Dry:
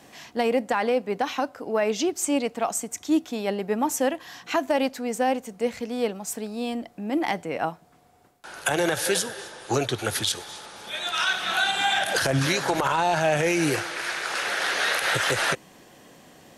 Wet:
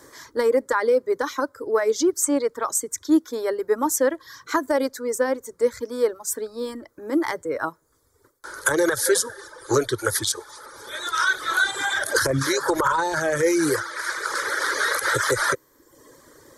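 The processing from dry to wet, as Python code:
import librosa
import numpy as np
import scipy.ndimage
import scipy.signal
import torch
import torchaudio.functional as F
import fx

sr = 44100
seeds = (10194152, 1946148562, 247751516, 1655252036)

y = fx.dereverb_blind(x, sr, rt60_s=0.85)
y = fx.fixed_phaser(y, sr, hz=730.0, stages=6)
y = y * 10.0 ** (6.5 / 20.0)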